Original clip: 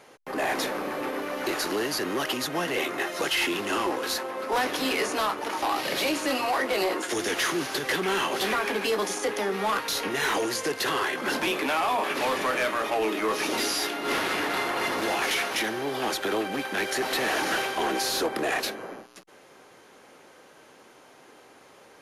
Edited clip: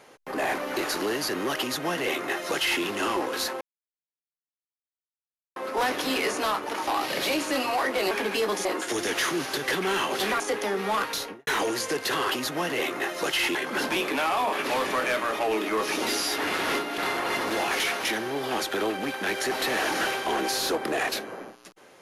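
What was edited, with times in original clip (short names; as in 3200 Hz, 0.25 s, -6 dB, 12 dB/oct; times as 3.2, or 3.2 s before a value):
0.58–1.28 cut
2.29–3.53 copy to 11.06
4.31 insert silence 1.95 s
8.61–9.15 move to 6.86
9.86–10.22 studio fade out
13.89–14.49 reverse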